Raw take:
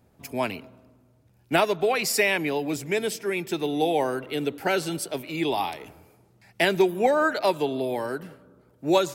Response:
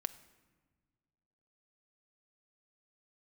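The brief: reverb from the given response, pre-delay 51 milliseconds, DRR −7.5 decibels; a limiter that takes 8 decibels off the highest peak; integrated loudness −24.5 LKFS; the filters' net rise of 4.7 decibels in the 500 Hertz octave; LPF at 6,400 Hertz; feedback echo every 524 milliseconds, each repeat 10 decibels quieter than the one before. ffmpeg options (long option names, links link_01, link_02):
-filter_complex "[0:a]lowpass=6400,equalizer=frequency=500:width_type=o:gain=6,alimiter=limit=-14dB:level=0:latency=1,aecho=1:1:524|1048|1572|2096:0.316|0.101|0.0324|0.0104,asplit=2[link_01][link_02];[1:a]atrim=start_sample=2205,adelay=51[link_03];[link_02][link_03]afir=irnorm=-1:irlink=0,volume=8dB[link_04];[link_01][link_04]amix=inputs=2:normalize=0,volume=-8dB"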